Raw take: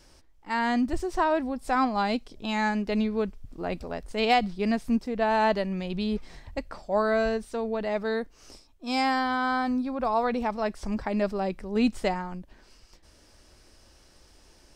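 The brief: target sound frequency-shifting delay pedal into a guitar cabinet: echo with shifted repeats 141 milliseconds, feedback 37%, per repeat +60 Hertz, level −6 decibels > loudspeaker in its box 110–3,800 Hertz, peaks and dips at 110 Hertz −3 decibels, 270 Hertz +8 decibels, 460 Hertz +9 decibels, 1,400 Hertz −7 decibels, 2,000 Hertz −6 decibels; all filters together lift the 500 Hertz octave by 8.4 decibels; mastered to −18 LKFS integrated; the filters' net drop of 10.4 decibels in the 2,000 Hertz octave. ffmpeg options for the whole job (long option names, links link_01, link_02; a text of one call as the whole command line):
ffmpeg -i in.wav -filter_complex "[0:a]equalizer=frequency=500:width_type=o:gain=4,equalizer=frequency=2000:width_type=o:gain=-8,asplit=5[link_01][link_02][link_03][link_04][link_05];[link_02]adelay=141,afreqshift=60,volume=-6dB[link_06];[link_03]adelay=282,afreqshift=120,volume=-14.6dB[link_07];[link_04]adelay=423,afreqshift=180,volume=-23.3dB[link_08];[link_05]adelay=564,afreqshift=240,volume=-31.9dB[link_09];[link_01][link_06][link_07][link_08][link_09]amix=inputs=5:normalize=0,highpass=110,equalizer=frequency=110:width_type=q:width=4:gain=-3,equalizer=frequency=270:width_type=q:width=4:gain=8,equalizer=frequency=460:width_type=q:width=4:gain=9,equalizer=frequency=1400:width_type=q:width=4:gain=-7,equalizer=frequency=2000:width_type=q:width=4:gain=-6,lowpass=frequency=3800:width=0.5412,lowpass=frequency=3800:width=1.3066,volume=3.5dB" out.wav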